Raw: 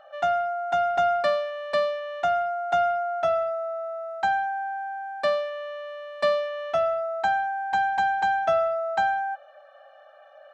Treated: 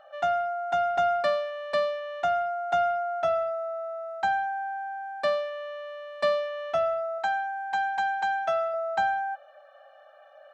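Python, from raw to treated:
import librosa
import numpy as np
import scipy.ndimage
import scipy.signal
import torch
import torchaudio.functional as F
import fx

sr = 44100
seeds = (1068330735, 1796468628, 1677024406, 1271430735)

y = fx.low_shelf(x, sr, hz=400.0, db=-10.0, at=(7.18, 8.74))
y = y * librosa.db_to_amplitude(-2.0)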